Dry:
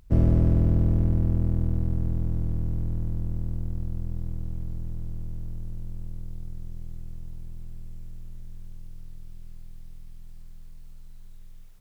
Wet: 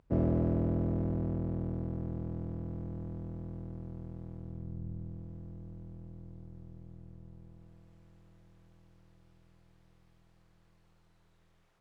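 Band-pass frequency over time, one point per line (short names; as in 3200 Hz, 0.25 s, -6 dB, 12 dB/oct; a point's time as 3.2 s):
band-pass, Q 0.58
4.35 s 590 Hz
4.88 s 230 Hz
5.26 s 420 Hz
7.33 s 420 Hz
7.9 s 870 Hz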